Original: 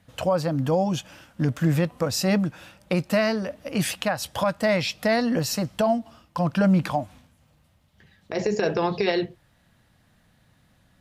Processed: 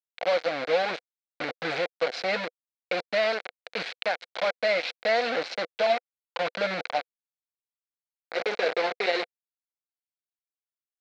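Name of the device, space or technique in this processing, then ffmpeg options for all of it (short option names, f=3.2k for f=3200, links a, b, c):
hand-held game console: -af "acrusher=bits=3:mix=0:aa=0.000001,highpass=430,equalizer=f=500:t=q:w=4:g=9,equalizer=f=710:t=q:w=4:g=7,equalizer=f=1k:t=q:w=4:g=-3,equalizer=f=1.5k:t=q:w=4:g=6,equalizer=f=2.2k:t=q:w=4:g=9,equalizer=f=4.1k:t=q:w=4:g=7,lowpass=f=4.6k:w=0.5412,lowpass=f=4.6k:w=1.3066,volume=-7.5dB"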